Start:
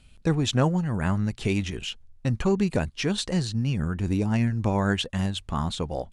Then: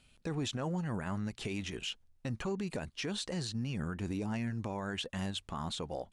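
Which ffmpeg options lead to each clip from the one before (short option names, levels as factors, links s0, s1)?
-af "lowshelf=f=130:g=-11.5,alimiter=limit=0.0668:level=0:latency=1:release=47,volume=0.596"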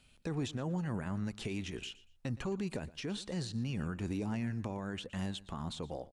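-filter_complex "[0:a]acrossover=split=440[s0][s1];[s1]acompressor=threshold=0.00794:ratio=6[s2];[s0][s2]amix=inputs=2:normalize=0,aecho=1:1:118|236:0.112|0.0258"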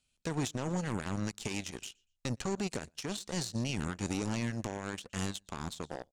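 -af "aeval=exprs='0.0596*(cos(1*acos(clip(val(0)/0.0596,-1,1)))-cos(1*PI/2))+0.0075*(cos(7*acos(clip(val(0)/0.0596,-1,1)))-cos(7*PI/2))':c=same,equalizer=f=6700:t=o:w=1.4:g=12,volume=1.26"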